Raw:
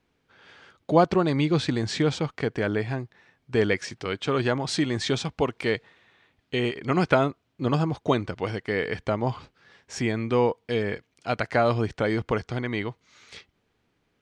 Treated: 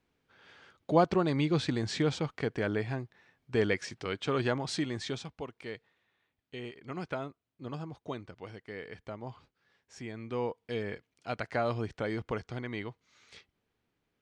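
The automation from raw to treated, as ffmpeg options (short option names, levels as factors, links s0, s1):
-af "volume=1.19,afade=t=out:st=4.5:d=0.93:silence=0.298538,afade=t=in:st=10.07:d=0.65:silence=0.446684"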